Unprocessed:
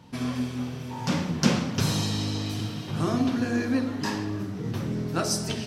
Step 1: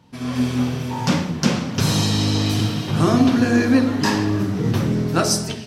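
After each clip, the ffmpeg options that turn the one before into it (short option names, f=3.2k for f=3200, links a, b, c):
-af "dynaudnorm=f=100:g=7:m=14dB,volume=-2.5dB"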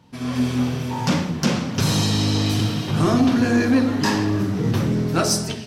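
-af "asoftclip=type=tanh:threshold=-9dB"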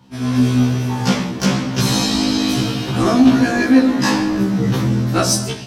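-af "afftfilt=real='re*1.73*eq(mod(b,3),0)':imag='im*1.73*eq(mod(b,3),0)':win_size=2048:overlap=0.75,volume=6.5dB"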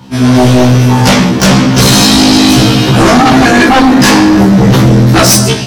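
-af "aeval=exprs='0.841*sin(PI/2*3.98*val(0)/0.841)':c=same"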